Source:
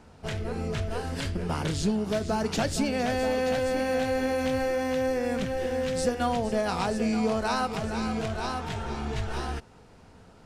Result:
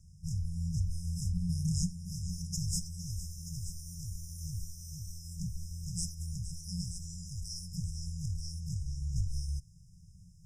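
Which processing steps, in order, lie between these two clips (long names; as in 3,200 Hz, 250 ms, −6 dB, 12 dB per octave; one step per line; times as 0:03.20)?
brick-wall band-stop 190–5,000 Hz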